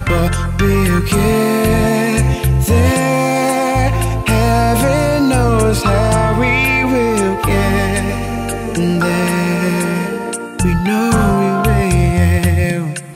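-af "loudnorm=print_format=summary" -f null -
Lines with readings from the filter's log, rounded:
Input Integrated:    -14.3 LUFS
Input True Peak:      -2.9 dBTP
Input LRA:             2.3 LU
Input Threshold:     -24.3 LUFS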